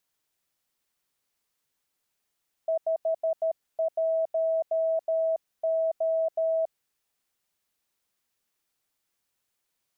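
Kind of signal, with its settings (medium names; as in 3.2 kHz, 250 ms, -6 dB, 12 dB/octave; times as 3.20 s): Morse "51O" 13 wpm 649 Hz -22.5 dBFS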